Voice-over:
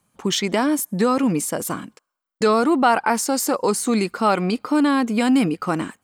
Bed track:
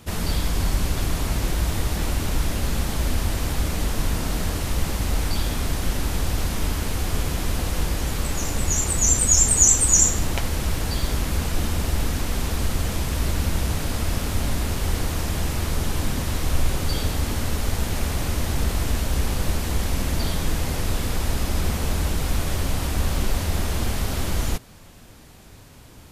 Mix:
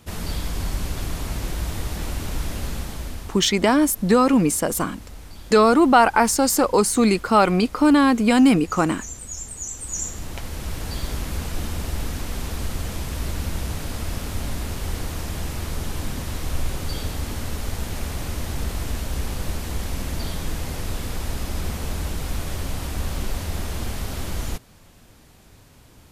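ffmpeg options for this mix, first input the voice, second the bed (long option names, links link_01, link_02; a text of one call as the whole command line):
ffmpeg -i stem1.wav -i stem2.wav -filter_complex "[0:a]adelay=3100,volume=2.5dB[link_01];[1:a]volume=9dB,afade=type=out:start_time=2.63:duration=0.81:silence=0.223872,afade=type=in:start_time=9.71:duration=1.27:silence=0.223872[link_02];[link_01][link_02]amix=inputs=2:normalize=0" out.wav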